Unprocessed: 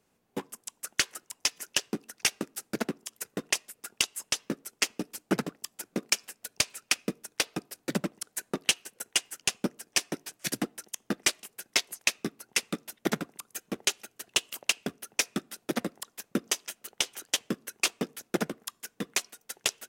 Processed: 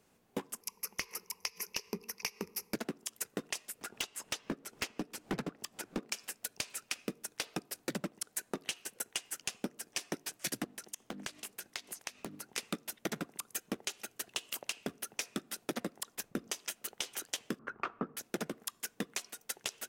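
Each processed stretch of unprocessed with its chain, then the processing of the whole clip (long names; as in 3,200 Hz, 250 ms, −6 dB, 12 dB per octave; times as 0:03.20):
0:00.61–0:02.74: EQ curve with evenly spaced ripples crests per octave 0.83, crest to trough 15 dB + downward compressor 2 to 1, threshold −37 dBFS + gain into a clipping stage and back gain 19.5 dB
0:03.81–0:06.12: high-shelf EQ 5,400 Hz −11 dB + upward compression, threshold −44 dBFS + hard clipping −27.5 dBFS
0:10.64–0:12.58: mains-hum notches 50/100/150/200/250/300 Hz + downward compressor 16 to 1, threshold −39 dBFS + highs frequency-modulated by the lows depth 0.57 ms
0:16.15–0:16.59: low-shelf EQ 120 Hz +10 dB + one half of a high-frequency compander decoder only
0:17.59–0:18.17: low-pass with resonance 1,300 Hz + low-shelf EQ 270 Hz +9 dB
whole clip: brickwall limiter −19.5 dBFS; downward compressor 5 to 1, threshold −37 dBFS; level +3 dB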